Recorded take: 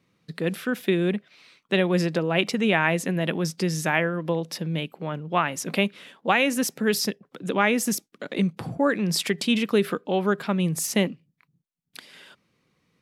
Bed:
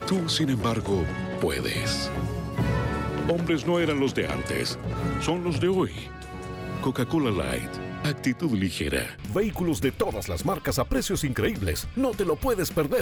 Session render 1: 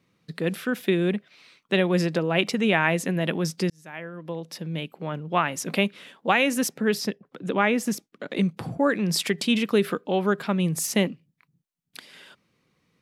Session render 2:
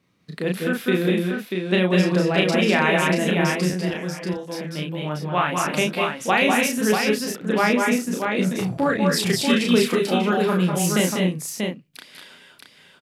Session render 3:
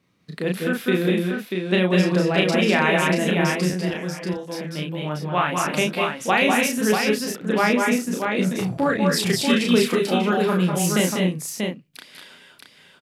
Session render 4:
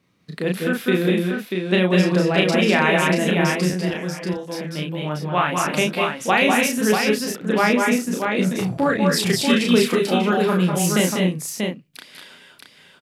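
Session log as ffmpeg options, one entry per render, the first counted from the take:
ffmpeg -i in.wav -filter_complex "[0:a]asettb=1/sr,asplit=3[link_01][link_02][link_03];[link_01]atrim=end=6.684[link_04];[link_02]atrim=start=6.68:end=8.31,asetpts=PTS-STARTPTS,afade=type=in:duration=0.004:curve=qsin,afade=type=out:start_time=1.626:duration=0.004:curve=qsin,highshelf=frequency=4800:gain=-9.5[link_05];[link_03]atrim=start=8.306[link_06];[link_04][link_05]acrossfade=duration=0.004:curve1=hsin:curve2=qsin[link_07];[link_07][link_06]acrossfade=duration=0.004:curve1=qsin:curve2=hsin,asplit=2[link_08][link_09];[link_08]atrim=end=3.7,asetpts=PTS-STARTPTS,afade=type=out:start_time=3.696:duration=0.004:curve=hsin[link_10];[link_09]atrim=start=3.7,asetpts=PTS-STARTPTS,afade=type=in:duration=1.48[link_11];[link_10][link_11]concat=n=2:v=0:a=1" out.wav
ffmpeg -i in.wav -filter_complex "[0:a]asplit=2[link_01][link_02];[link_02]adelay=33,volume=-3dB[link_03];[link_01][link_03]amix=inputs=2:normalize=0,aecho=1:1:194|206|236|637:0.501|0.501|0.211|0.562" out.wav
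ffmpeg -i in.wav -af anull out.wav
ffmpeg -i in.wav -af "volume=1.5dB" out.wav

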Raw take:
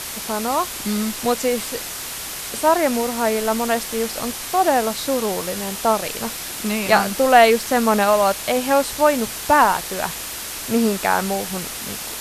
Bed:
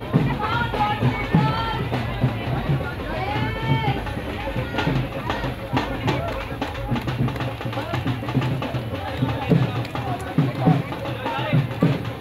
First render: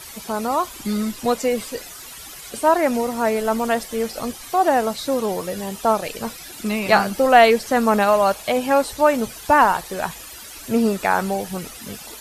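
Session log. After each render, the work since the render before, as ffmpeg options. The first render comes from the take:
ffmpeg -i in.wav -af "afftdn=noise_reduction=13:noise_floor=-31" out.wav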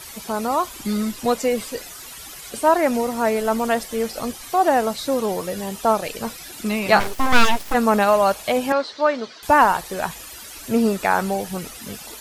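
ffmpeg -i in.wav -filter_complex "[0:a]asplit=3[link_01][link_02][link_03];[link_01]afade=type=out:start_time=6.99:duration=0.02[link_04];[link_02]aeval=exprs='abs(val(0))':channel_layout=same,afade=type=in:start_time=6.99:duration=0.02,afade=type=out:start_time=7.73:duration=0.02[link_05];[link_03]afade=type=in:start_time=7.73:duration=0.02[link_06];[link_04][link_05][link_06]amix=inputs=3:normalize=0,asettb=1/sr,asplit=3[link_07][link_08][link_09];[link_07]atrim=end=8.724[link_10];[link_08]atrim=start=8.72:end=9.43,asetpts=PTS-STARTPTS,afade=type=in:duration=0.004:curve=qsin,afade=type=out:start_time=0.706:duration=0.004:curve=qsin,highpass=360,equalizer=frequency=500:width_type=q:width=4:gain=-4,equalizer=frequency=820:width_type=q:width=4:gain=-7,equalizer=frequency=2600:width_type=q:width=4:gain=-6,equalizer=frequency=4300:width_type=q:width=4:gain=4,lowpass=frequency=4900:width=0.5412,lowpass=frequency=4900:width=1.3066[link_11];[link_09]atrim=start=9.426[link_12];[link_10][link_11]acrossfade=duration=0.004:curve1=hsin:curve2=qsin[link_13];[link_13][link_12]acrossfade=duration=0.004:curve1=qsin:curve2=hsin" out.wav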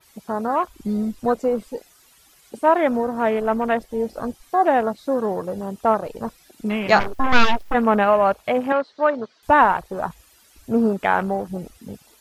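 ffmpeg -i in.wav -af "afwtdn=0.0355,adynamicequalizer=threshold=0.00562:dfrequency=8300:dqfactor=0.73:tfrequency=8300:tqfactor=0.73:attack=5:release=100:ratio=0.375:range=2.5:mode=cutabove:tftype=bell" out.wav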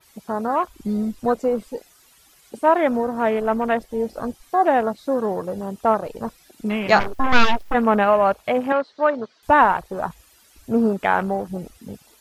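ffmpeg -i in.wav -af anull out.wav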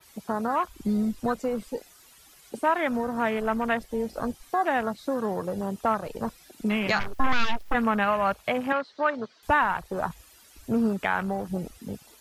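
ffmpeg -i in.wav -filter_complex "[0:a]acrossover=split=200|1100[link_01][link_02][link_03];[link_02]acompressor=threshold=-28dB:ratio=6[link_04];[link_01][link_04][link_03]amix=inputs=3:normalize=0,alimiter=limit=-11.5dB:level=0:latency=1:release=369" out.wav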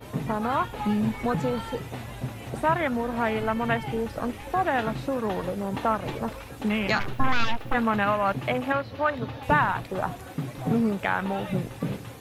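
ffmpeg -i in.wav -i bed.wav -filter_complex "[1:a]volume=-12dB[link_01];[0:a][link_01]amix=inputs=2:normalize=0" out.wav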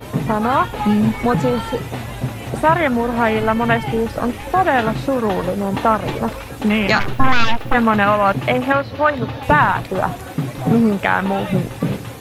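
ffmpeg -i in.wav -af "volume=9.5dB,alimiter=limit=-2dB:level=0:latency=1" out.wav

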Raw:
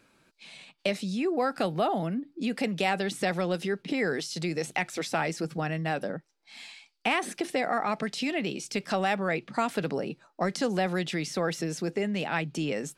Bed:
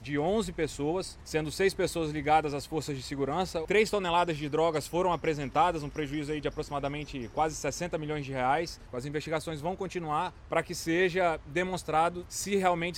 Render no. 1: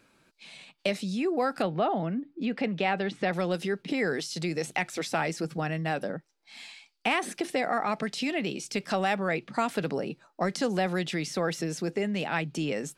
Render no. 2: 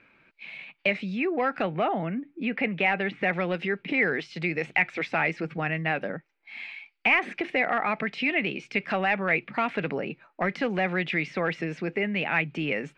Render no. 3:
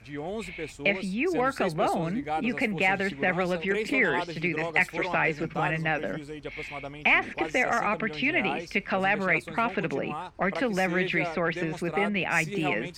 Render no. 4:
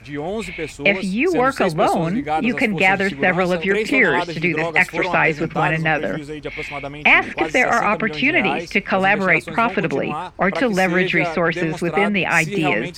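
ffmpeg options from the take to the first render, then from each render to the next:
ffmpeg -i in.wav -filter_complex "[0:a]asettb=1/sr,asplit=3[link_01][link_02][link_03];[link_01]atrim=end=1.624[link_04];[link_02]atrim=start=1.62:end=3.33,asetpts=PTS-STARTPTS,afade=type=in:duration=0.004:curve=qsin,afade=type=out:start_time=1.706:duration=0.004:curve=qsin,lowpass=3200[link_05];[link_03]atrim=start=3.326[link_06];[link_04][link_05]acrossfade=duration=0.004:curve1=hsin:curve2=qsin[link_07];[link_07][link_06]acrossfade=duration=0.004:curve1=qsin:curve2=hsin" out.wav
ffmpeg -i in.wav -af "asoftclip=type=hard:threshold=-19dB,lowpass=frequency=2300:width_type=q:width=3.6" out.wav
ffmpeg -i in.wav -i bed.wav -filter_complex "[1:a]volume=-6dB[link_01];[0:a][link_01]amix=inputs=2:normalize=0" out.wav
ffmpeg -i in.wav -af "volume=9dB,alimiter=limit=-1dB:level=0:latency=1" out.wav

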